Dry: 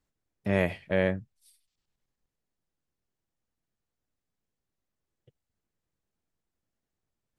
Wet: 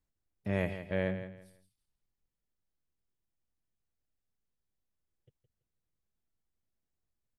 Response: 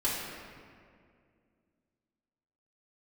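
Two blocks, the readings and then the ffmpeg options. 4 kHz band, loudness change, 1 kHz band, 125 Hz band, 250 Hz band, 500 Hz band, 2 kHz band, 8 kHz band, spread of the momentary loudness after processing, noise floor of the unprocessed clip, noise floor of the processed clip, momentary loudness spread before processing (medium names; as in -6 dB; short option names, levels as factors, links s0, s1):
-7.0 dB, -6.0 dB, -7.0 dB, -4.0 dB, -5.5 dB, -7.0 dB, -7.0 dB, no reading, 10 LU, under -85 dBFS, under -85 dBFS, 10 LU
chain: -filter_complex "[0:a]lowshelf=f=99:g=8,asplit=2[s0][s1];[s1]aecho=0:1:166|332|498:0.282|0.0705|0.0176[s2];[s0][s2]amix=inputs=2:normalize=0,volume=0.422"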